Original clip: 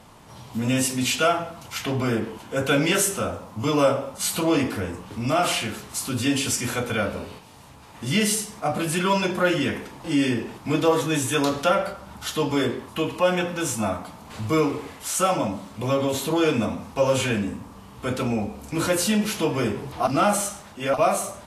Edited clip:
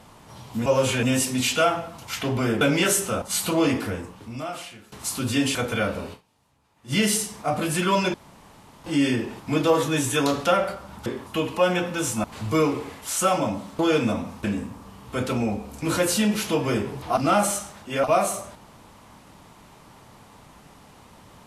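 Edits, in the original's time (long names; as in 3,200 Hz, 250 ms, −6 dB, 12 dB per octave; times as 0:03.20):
0:02.24–0:02.70: remove
0:03.31–0:04.12: remove
0:04.75–0:05.82: fade out quadratic, to −17.5 dB
0:06.45–0:06.73: remove
0:07.31–0:08.11: duck −19 dB, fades 0.33 s exponential
0:09.32–0:10.02: fill with room tone
0:12.24–0:12.68: remove
0:13.86–0:14.22: remove
0:15.77–0:16.32: remove
0:16.97–0:17.34: move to 0:00.66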